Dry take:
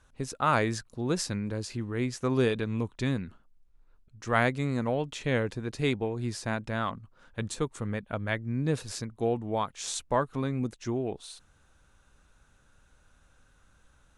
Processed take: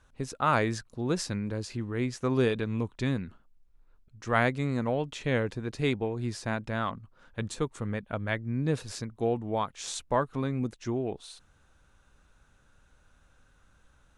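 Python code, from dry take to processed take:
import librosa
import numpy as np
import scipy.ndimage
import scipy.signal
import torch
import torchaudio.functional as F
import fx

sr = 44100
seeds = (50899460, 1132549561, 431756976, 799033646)

y = fx.high_shelf(x, sr, hz=7200.0, db=-5.5)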